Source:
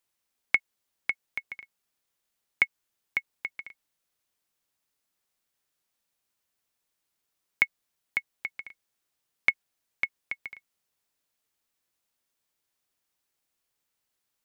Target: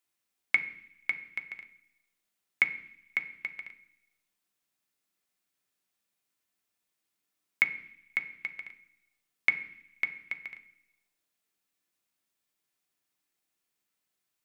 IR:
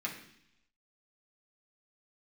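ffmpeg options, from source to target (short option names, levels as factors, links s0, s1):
-filter_complex "[0:a]asplit=2[s0][s1];[1:a]atrim=start_sample=2205,lowshelf=f=400:g=4.5[s2];[s1][s2]afir=irnorm=-1:irlink=0,volume=0.596[s3];[s0][s3]amix=inputs=2:normalize=0,volume=0.531"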